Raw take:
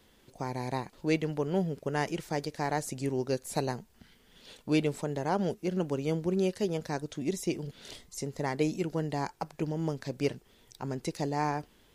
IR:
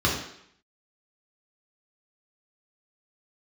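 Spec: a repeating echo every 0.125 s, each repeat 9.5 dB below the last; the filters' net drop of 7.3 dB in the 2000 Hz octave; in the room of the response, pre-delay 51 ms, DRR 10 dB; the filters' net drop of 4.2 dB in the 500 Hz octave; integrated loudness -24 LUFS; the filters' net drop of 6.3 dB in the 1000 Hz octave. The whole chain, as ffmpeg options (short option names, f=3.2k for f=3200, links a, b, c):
-filter_complex "[0:a]equalizer=f=500:t=o:g=-4,equalizer=f=1k:t=o:g=-5.5,equalizer=f=2k:t=o:g=-7.5,aecho=1:1:125|250|375|500:0.335|0.111|0.0365|0.012,asplit=2[a][b];[1:a]atrim=start_sample=2205,adelay=51[c];[b][c]afir=irnorm=-1:irlink=0,volume=-24.5dB[d];[a][d]amix=inputs=2:normalize=0,volume=9.5dB"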